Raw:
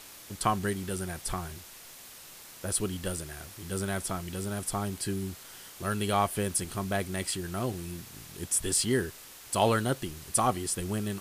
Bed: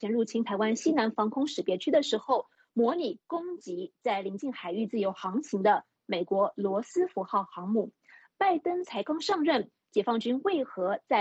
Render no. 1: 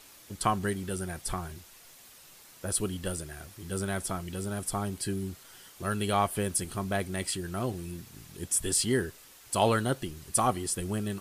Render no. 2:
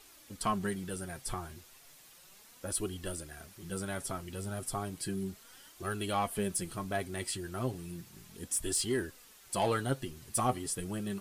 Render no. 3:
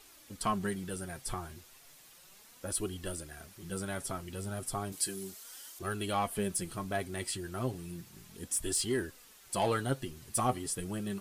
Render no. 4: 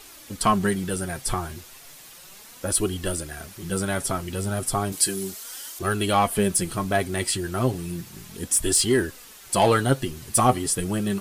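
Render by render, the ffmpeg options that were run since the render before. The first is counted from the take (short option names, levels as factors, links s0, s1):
-af "afftdn=nr=6:nf=-49"
-af "asoftclip=type=tanh:threshold=0.141,flanger=delay=2.4:depth=6.5:regen=35:speed=0.34:shape=triangular"
-filter_complex "[0:a]asettb=1/sr,asplit=3[s0][s1][s2];[s0]atrim=end=4.924[s3];[s1]atrim=start=4.92:end=5.79,asetpts=PTS-STARTPTS,afade=t=in:d=0.004:c=qsin,afade=t=out:st=0.866:d=0.004:c=qsin,bass=f=250:g=-12,treble=f=4000:g=9[s4];[s2]atrim=start=5.786[s5];[s3][s4]acrossfade=d=0.004:c1=hsin:c2=qsin[s6];[s6][s5]acrossfade=d=0.004:c1=qsin:c2=hsin"
-af "volume=3.76"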